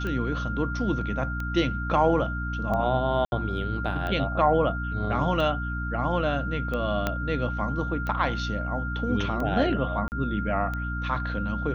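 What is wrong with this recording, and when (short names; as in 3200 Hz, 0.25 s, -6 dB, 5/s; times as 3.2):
hum 60 Hz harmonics 5 -31 dBFS
tick 45 rpm -20 dBFS
tone 1400 Hz -33 dBFS
3.25–3.32 gap 71 ms
7.07 pop -11 dBFS
10.08–10.12 gap 39 ms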